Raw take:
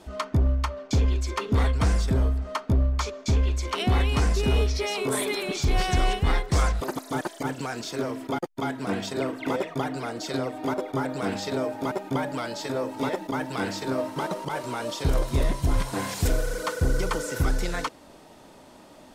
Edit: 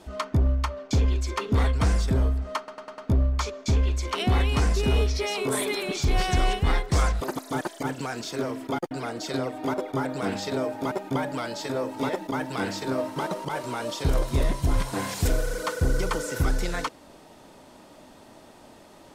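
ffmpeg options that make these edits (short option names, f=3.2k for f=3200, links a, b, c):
-filter_complex "[0:a]asplit=6[a][b][c][d][e][f];[a]atrim=end=2.682[g];[b]atrim=start=2.578:end=2.682[h];[c]atrim=start=2.578:end=2.682[i];[d]atrim=start=2.578:end=2.682[j];[e]atrim=start=2.578:end=8.512[k];[f]atrim=start=9.908[l];[g][h]acrossfade=d=0.004:c1=hsin:c2=hsin[m];[m][i]acrossfade=d=0.004:c1=hsin:c2=hsin[n];[n][j]acrossfade=d=0.004:c1=hsin:c2=hsin[o];[o][k]acrossfade=d=0.004:c1=hsin:c2=hsin[p];[p][l]acrossfade=d=0.004:c1=hsin:c2=hsin"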